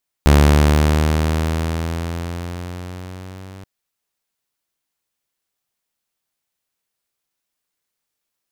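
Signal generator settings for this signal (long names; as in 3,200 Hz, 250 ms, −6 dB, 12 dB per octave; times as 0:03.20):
pitch glide with a swell saw, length 3.38 s, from 72.1 Hz, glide +5 semitones, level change −27.5 dB, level −5 dB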